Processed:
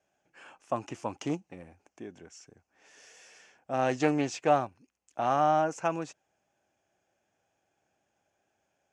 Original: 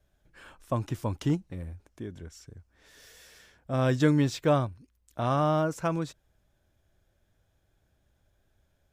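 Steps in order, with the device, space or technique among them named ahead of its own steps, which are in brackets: full-range speaker at full volume (loudspeaker Doppler distortion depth 0.2 ms; cabinet simulation 240–8400 Hz, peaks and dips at 780 Hz +9 dB, 2.6 kHz +7 dB, 3.8 kHz -9 dB, 6.4 kHz +6 dB); trim -2 dB

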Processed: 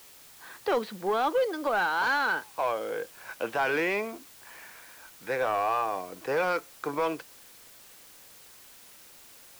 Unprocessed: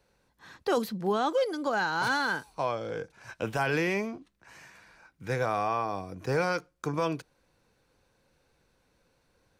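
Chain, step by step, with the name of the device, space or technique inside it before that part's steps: tape answering machine (band-pass 380–3300 Hz; saturation -22.5 dBFS, distortion -18 dB; wow and flutter; white noise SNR 21 dB); trim +4 dB

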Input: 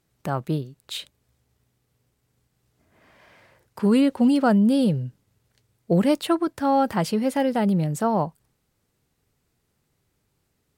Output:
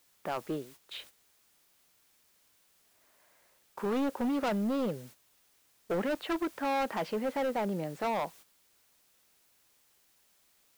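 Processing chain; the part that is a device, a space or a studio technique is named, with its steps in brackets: aircraft radio (band-pass 370–2300 Hz; hard clipper -25 dBFS, distortion -7 dB; white noise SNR 21 dB; gate -49 dBFS, range -11 dB); trim -2.5 dB

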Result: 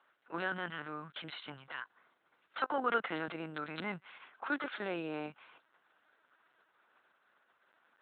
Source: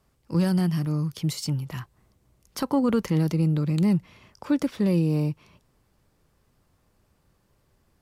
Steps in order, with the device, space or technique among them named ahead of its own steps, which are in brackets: talking toy (LPC vocoder at 8 kHz pitch kept; high-pass 680 Hz 12 dB/octave; peaking EQ 1.5 kHz +12 dB 0.41 oct)

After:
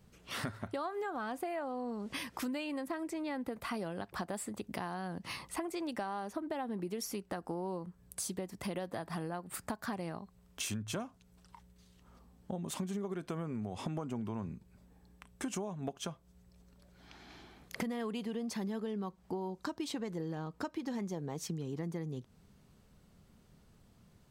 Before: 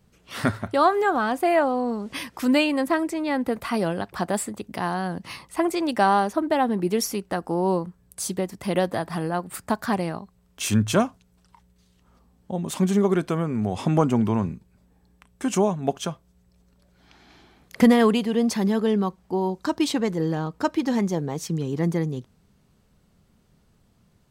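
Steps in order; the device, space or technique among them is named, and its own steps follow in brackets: serial compression, leveller first (compression 2.5:1, threshold -22 dBFS, peak gain reduction 7.5 dB; compression 4:1, threshold -36 dBFS, peak gain reduction 15.5 dB); trim -1.5 dB

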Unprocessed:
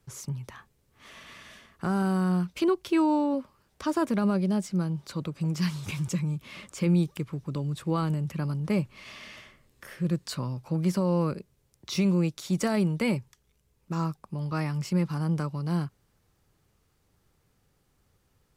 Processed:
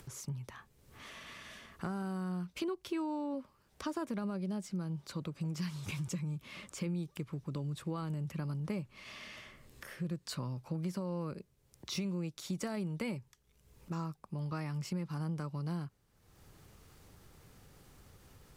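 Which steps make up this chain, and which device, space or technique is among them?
upward and downward compression (upward compressor, threshold -39 dBFS; compression, threshold -29 dBFS, peak gain reduction 9.5 dB); trim -5 dB

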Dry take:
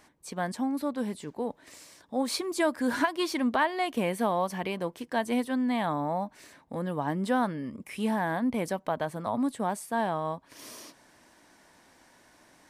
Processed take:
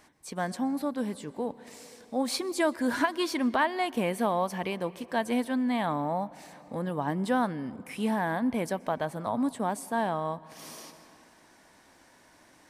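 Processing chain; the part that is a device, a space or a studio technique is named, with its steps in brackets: compressed reverb return (on a send at -9 dB: reverberation RT60 1.9 s, pre-delay 116 ms + compression 6:1, threshold -38 dBFS, peak gain reduction 15 dB)

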